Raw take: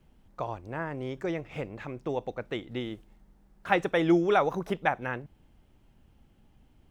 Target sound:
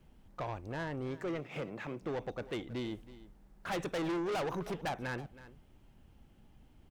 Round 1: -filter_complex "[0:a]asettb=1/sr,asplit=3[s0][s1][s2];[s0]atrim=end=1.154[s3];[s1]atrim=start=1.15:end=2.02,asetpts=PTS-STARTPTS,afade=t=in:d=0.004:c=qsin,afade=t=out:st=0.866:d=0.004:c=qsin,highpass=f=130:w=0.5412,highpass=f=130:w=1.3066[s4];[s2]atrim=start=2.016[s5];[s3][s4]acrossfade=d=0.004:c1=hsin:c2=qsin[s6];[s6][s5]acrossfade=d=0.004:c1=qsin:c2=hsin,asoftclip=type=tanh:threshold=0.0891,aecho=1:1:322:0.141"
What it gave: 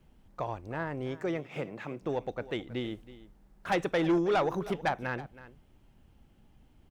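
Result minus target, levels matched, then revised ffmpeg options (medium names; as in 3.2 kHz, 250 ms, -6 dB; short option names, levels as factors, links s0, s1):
saturation: distortion -8 dB
-filter_complex "[0:a]asettb=1/sr,asplit=3[s0][s1][s2];[s0]atrim=end=1.154[s3];[s1]atrim=start=1.15:end=2.02,asetpts=PTS-STARTPTS,afade=t=in:d=0.004:c=qsin,afade=t=out:st=0.866:d=0.004:c=qsin,highpass=f=130:w=0.5412,highpass=f=130:w=1.3066[s4];[s2]atrim=start=2.016[s5];[s3][s4]acrossfade=d=0.004:c1=hsin:c2=qsin[s6];[s6][s5]acrossfade=d=0.004:c1=qsin:c2=hsin,asoftclip=type=tanh:threshold=0.0237,aecho=1:1:322:0.141"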